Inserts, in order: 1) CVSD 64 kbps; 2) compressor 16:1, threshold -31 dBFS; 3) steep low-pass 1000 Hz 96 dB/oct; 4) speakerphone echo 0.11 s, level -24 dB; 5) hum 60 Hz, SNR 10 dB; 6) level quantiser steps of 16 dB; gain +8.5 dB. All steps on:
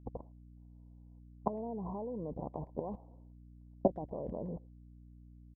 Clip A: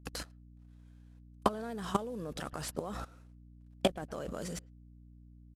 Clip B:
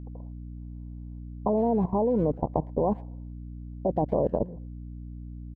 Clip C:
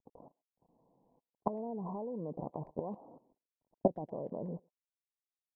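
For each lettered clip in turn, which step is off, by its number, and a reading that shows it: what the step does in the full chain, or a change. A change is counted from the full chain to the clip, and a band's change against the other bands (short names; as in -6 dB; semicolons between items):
3, 1 kHz band +4.0 dB; 2, mean gain reduction 7.5 dB; 5, momentary loudness spread change -13 LU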